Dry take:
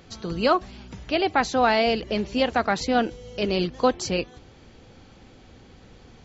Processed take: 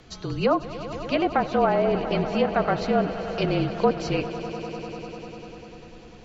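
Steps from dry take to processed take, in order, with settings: treble ducked by the level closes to 1100 Hz, closed at -16.5 dBFS; swelling echo 99 ms, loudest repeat 5, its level -16 dB; frequency shift -36 Hz

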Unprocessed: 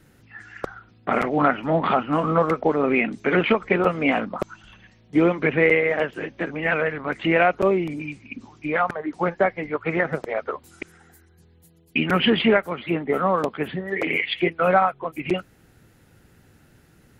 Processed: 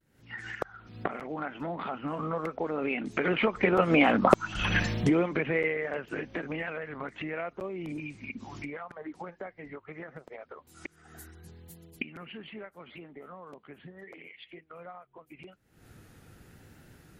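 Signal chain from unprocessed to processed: recorder AGC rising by 72 dB/s; Doppler pass-by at 4.29, 7 m/s, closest 2.8 m; vibrato 0.79 Hz 59 cents

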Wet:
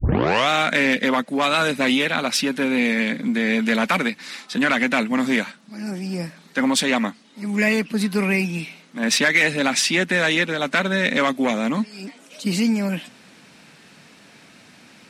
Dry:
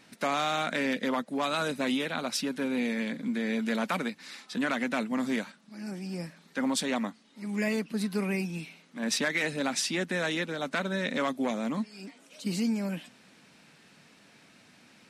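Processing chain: tape start at the beginning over 0.49 s; dynamic EQ 2300 Hz, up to +6 dB, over -46 dBFS, Q 1.1; added harmonics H 5 -25 dB, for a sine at -12 dBFS; gain +7 dB

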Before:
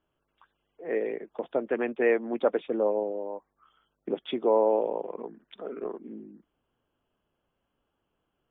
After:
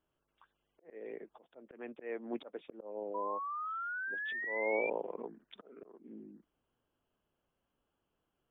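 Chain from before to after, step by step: auto swell 0.452 s; painted sound rise, 3.14–4.9, 970–2400 Hz -34 dBFS; gain -5 dB

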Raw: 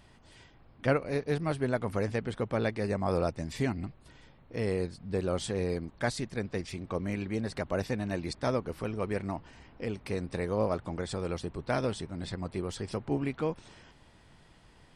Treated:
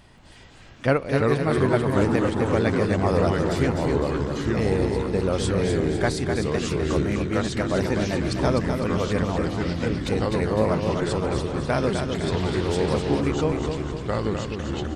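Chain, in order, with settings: echoes that change speed 0.18 s, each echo -3 st, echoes 3; feedback echo 0.253 s, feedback 46%, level -6 dB; 12.31–13.2 band noise 430–4400 Hz -46 dBFS; gain +6 dB

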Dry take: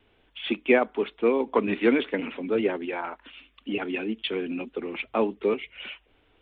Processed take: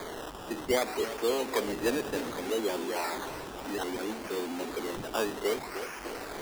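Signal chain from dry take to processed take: zero-crossing step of -21 dBFS; LPF 3400 Hz 6 dB/oct; three-band isolator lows -16 dB, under 300 Hz, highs -15 dB, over 2100 Hz; decimation with a swept rate 16×, swing 60% 0.63 Hz; warbling echo 0.3 s, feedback 64%, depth 177 cents, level -11 dB; gain -7.5 dB

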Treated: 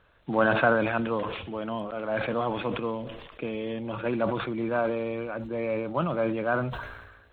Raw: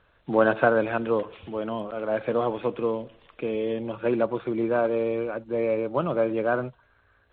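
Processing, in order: dynamic EQ 420 Hz, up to -8 dB, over -37 dBFS, Q 1.5; sustainer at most 46 dB/s

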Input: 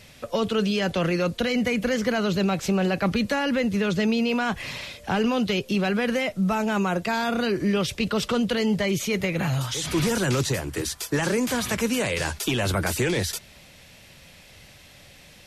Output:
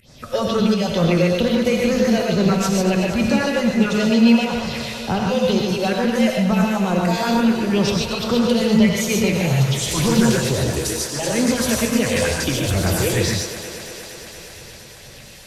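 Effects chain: phaser stages 4, 2.2 Hz, lowest notch 200–2700 Hz; in parallel at -11 dB: wavefolder -24 dBFS; on the sum: pump 81 bpm, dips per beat 1, -19 dB, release 0.174 s; on a send: thinning echo 0.234 s, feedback 80%, high-pass 190 Hz, level -11.5 dB; on the sum: non-linear reverb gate 0.17 s rising, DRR -0.5 dB; gain +3.5 dB

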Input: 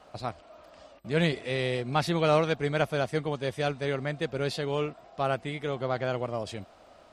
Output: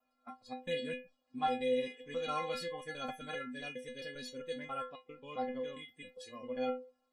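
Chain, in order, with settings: slices in reverse order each 0.134 s, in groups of 5; metallic resonator 250 Hz, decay 0.43 s, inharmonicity 0.008; spectral noise reduction 16 dB; gain +6 dB

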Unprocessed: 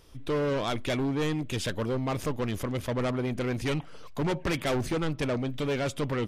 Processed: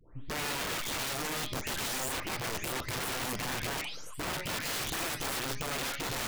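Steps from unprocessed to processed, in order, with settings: spectral delay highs late, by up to 0.464 s; wrapped overs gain 29.5 dB; de-hum 204.5 Hz, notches 31

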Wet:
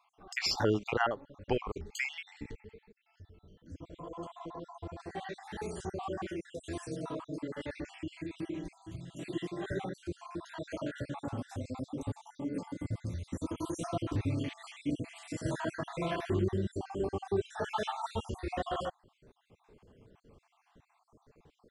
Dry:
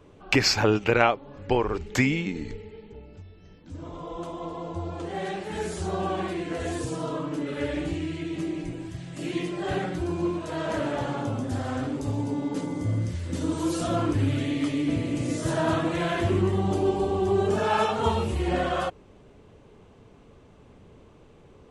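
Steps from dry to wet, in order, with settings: random spectral dropouts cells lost 54%; 2.77–3.2 compressor, threshold -50 dBFS, peak gain reduction 8 dB; gain -6.5 dB

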